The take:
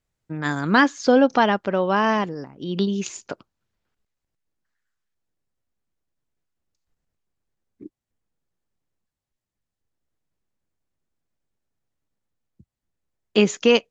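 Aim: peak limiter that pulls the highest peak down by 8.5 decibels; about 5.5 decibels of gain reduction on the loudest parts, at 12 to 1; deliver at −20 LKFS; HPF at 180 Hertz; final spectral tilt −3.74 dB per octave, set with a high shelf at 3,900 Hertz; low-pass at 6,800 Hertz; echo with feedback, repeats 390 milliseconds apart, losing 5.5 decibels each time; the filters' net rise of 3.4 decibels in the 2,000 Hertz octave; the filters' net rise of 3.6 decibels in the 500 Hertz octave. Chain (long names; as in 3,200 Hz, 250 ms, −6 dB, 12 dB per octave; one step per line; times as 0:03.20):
high-pass filter 180 Hz
low-pass filter 6,800 Hz
parametric band 500 Hz +4 dB
parametric band 2,000 Hz +5 dB
high-shelf EQ 3,900 Hz −3.5 dB
downward compressor 12 to 1, threshold −13 dBFS
brickwall limiter −11.5 dBFS
repeating echo 390 ms, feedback 53%, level −5.5 dB
level +4 dB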